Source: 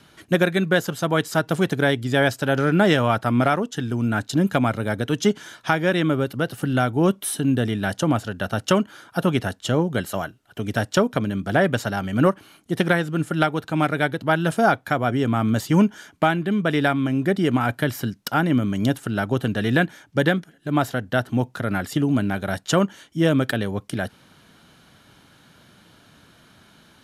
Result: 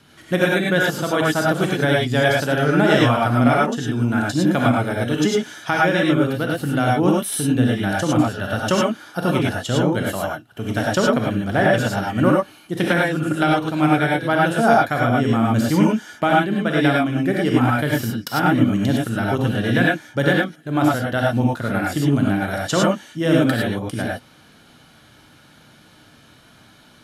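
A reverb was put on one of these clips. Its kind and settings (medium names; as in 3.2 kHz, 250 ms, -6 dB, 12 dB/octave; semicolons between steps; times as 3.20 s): gated-style reverb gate 130 ms rising, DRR -3 dB; trim -1.5 dB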